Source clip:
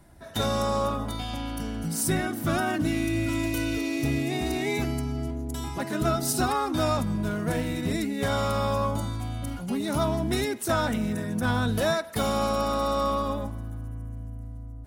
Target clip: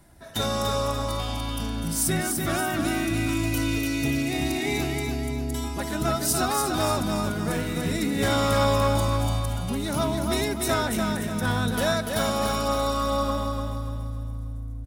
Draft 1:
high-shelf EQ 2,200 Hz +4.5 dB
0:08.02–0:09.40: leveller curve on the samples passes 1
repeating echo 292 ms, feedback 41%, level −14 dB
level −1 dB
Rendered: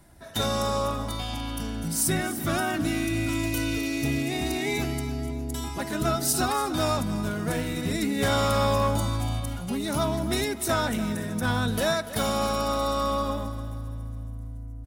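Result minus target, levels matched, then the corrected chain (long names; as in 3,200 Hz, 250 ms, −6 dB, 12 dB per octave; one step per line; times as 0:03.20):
echo-to-direct −9.5 dB
high-shelf EQ 2,200 Hz +4.5 dB
0:08.02–0:09.40: leveller curve on the samples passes 1
repeating echo 292 ms, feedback 41%, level −4.5 dB
level −1 dB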